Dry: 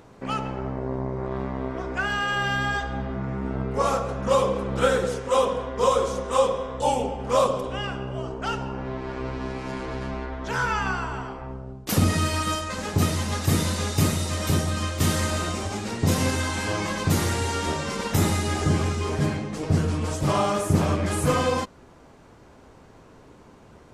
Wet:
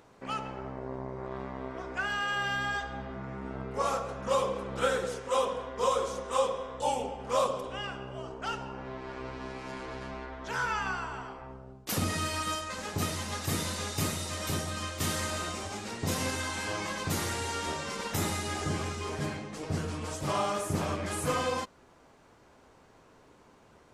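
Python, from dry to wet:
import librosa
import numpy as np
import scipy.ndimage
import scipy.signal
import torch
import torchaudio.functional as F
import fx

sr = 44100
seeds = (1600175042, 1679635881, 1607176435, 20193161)

y = fx.low_shelf(x, sr, hz=380.0, db=-7.5)
y = F.gain(torch.from_numpy(y), -5.0).numpy()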